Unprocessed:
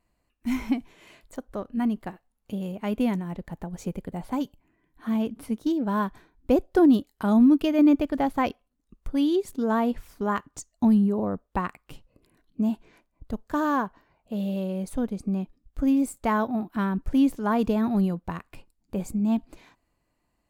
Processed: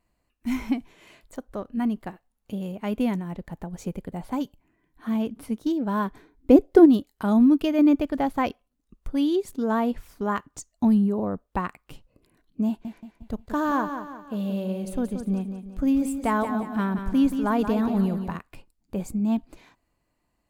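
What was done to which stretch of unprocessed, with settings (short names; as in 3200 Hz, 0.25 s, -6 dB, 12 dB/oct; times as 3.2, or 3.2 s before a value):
6.04–6.84 small resonant body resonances 290/420/2100 Hz, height 8 dB -> 12 dB
12.67–18.36 feedback echo 0.178 s, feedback 43%, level -8.5 dB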